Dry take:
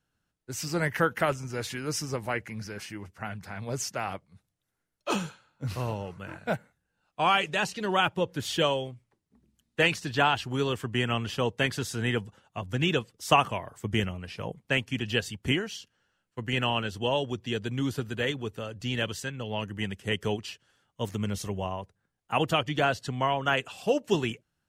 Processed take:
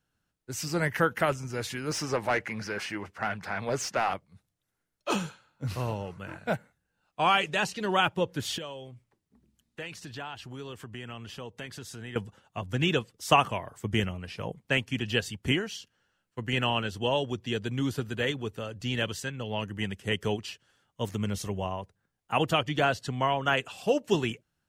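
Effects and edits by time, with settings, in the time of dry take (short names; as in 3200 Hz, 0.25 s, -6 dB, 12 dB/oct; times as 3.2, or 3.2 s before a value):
1.91–4.14 overdrive pedal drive 17 dB, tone 2100 Hz, clips at -16 dBFS
8.58–12.16 compressor 2.5:1, threshold -43 dBFS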